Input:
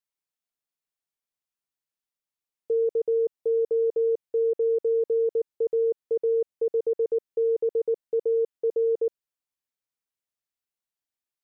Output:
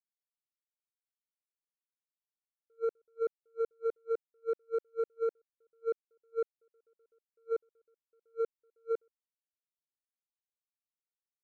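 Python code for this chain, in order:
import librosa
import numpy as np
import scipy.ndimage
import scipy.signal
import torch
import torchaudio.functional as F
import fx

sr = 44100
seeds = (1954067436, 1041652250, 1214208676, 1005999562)

y = scipy.signal.medfilt(x, 41)
y = 10.0 ** (-23.0 / 20.0) * np.tanh(y / 10.0 ** (-23.0 / 20.0))
y = fx.attack_slew(y, sr, db_per_s=560.0)
y = y * 10.0 ** (-2.0 / 20.0)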